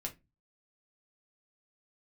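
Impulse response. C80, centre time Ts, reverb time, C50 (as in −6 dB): 26.5 dB, 10 ms, 0.20 s, 16.5 dB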